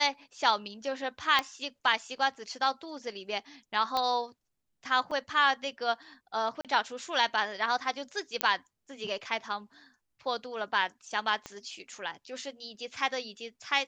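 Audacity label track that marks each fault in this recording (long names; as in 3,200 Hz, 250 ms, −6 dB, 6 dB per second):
1.390000	1.390000	click −12 dBFS
3.970000	3.970000	click −16 dBFS
5.110000	5.110000	drop-out 4.5 ms
6.610000	6.650000	drop-out 37 ms
8.410000	8.410000	click −8 dBFS
11.460000	11.460000	click −24 dBFS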